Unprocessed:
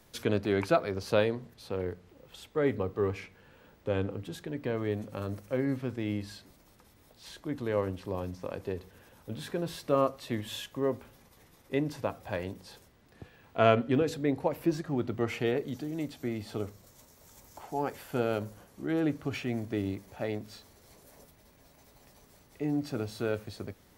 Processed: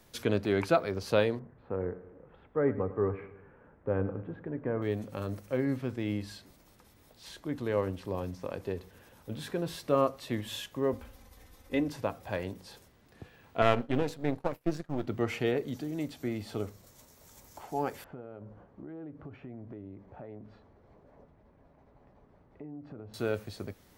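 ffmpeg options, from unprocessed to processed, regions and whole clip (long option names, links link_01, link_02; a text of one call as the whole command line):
ffmpeg -i in.wav -filter_complex "[0:a]asettb=1/sr,asplit=3[link_01][link_02][link_03];[link_01]atrim=end=1.394[link_04];[link_02]atrim=start=1.39:end=4.82,asetpts=PTS-STARTPTS,afade=type=in:duration=0.004:curve=qsin,afade=type=out:start_time=3.426:duration=0.004:curve=qsin,lowpass=frequency=1700:width=0.5412,lowpass=frequency=1700:width=1.3066,aecho=1:1:104|208|312|416|520:0.178|0.0889|0.0445|0.0222|0.0111,atrim=end_sample=151263[link_05];[link_03]atrim=start=4.816[link_06];[link_04][link_05]acrossfade=duration=0.004:curve1=hsin:curve2=qsin[link_07];[link_07][link_06]acrossfade=duration=0.004:curve1=qsin:curve2=hsin,asettb=1/sr,asplit=3[link_08][link_09][link_10];[link_08]atrim=end=10.934[link_11];[link_09]atrim=start=10.93:end=11.88,asetpts=PTS-STARTPTS,afade=type=in:duration=0.004:curve=qsin,afade=type=out:start_time=0.946:duration=0.004:curve=qsin,lowshelf=frequency=110:width_type=q:width=1.5:gain=8,aecho=1:1:3.9:0.57,atrim=end_sample=41895[link_12];[link_10]atrim=start=11.876[link_13];[link_11][link_12]acrossfade=duration=0.004:curve1=hsin:curve2=qsin[link_14];[link_14][link_13]acrossfade=duration=0.004:curve1=qsin:curve2=hsin,asettb=1/sr,asplit=3[link_15][link_16][link_17];[link_15]atrim=end=13.624[link_18];[link_16]atrim=start=13.62:end=15.07,asetpts=PTS-STARTPTS,afade=type=in:duration=0.004:curve=qsin,afade=type=out:start_time=1.446:duration=0.004:curve=qsin,aeval=exprs='if(lt(val(0),0),0.251*val(0),val(0))':channel_layout=same,agate=range=-33dB:threshold=-37dB:ratio=3:release=100:detection=peak[link_19];[link_17]atrim=start=15.066[link_20];[link_18][link_19]acrossfade=duration=0.004:curve1=hsin:curve2=qsin[link_21];[link_21][link_20]acrossfade=duration=0.004:curve1=qsin:curve2=hsin,asettb=1/sr,asplit=3[link_22][link_23][link_24];[link_22]atrim=end=18.044[link_25];[link_23]atrim=start=18.04:end=23.14,asetpts=PTS-STARTPTS,afade=type=in:duration=0.004:curve=qsin,afade=type=out:start_time=5.096:duration=0.004:curve=qsin,acompressor=threshold=-41dB:ratio=6:attack=3.2:release=140:knee=1:detection=peak,lowpass=1200[link_26];[link_24]atrim=start=23.136[link_27];[link_25][link_26]acrossfade=duration=0.004:curve1=hsin:curve2=qsin[link_28];[link_28][link_27]acrossfade=duration=0.004:curve1=qsin:curve2=hsin" out.wav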